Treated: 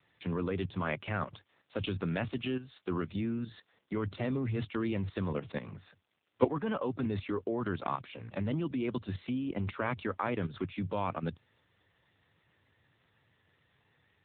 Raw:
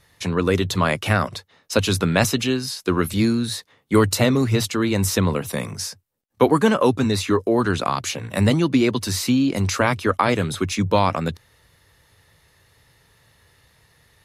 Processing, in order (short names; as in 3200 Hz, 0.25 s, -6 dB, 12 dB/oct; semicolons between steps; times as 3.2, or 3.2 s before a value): level quantiser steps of 12 dB; crackle 530/s -53 dBFS; gain -7.5 dB; AMR-NB 7.95 kbps 8000 Hz